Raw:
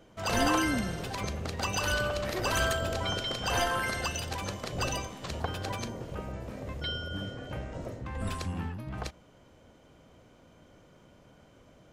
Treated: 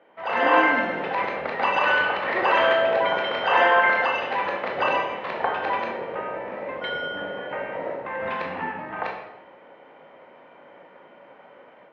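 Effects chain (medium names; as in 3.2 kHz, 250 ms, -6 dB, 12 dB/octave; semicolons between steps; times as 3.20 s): reverberation RT60 1.0 s, pre-delay 18 ms, DRR 0 dB; level rider gain up to 7 dB; cabinet simulation 420–2700 Hz, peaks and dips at 530 Hz +4 dB, 880 Hz +7 dB, 1.9 kHz +7 dB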